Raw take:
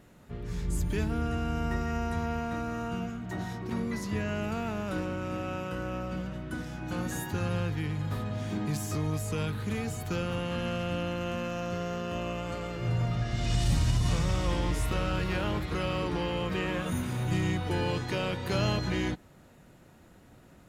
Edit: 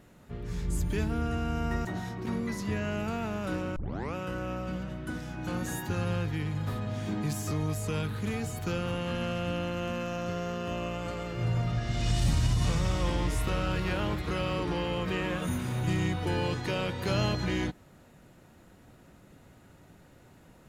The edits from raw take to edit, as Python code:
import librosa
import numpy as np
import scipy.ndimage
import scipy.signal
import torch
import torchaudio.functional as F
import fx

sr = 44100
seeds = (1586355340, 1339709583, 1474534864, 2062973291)

y = fx.edit(x, sr, fx.cut(start_s=1.85, length_s=1.44),
    fx.tape_start(start_s=5.2, length_s=0.39), tone=tone)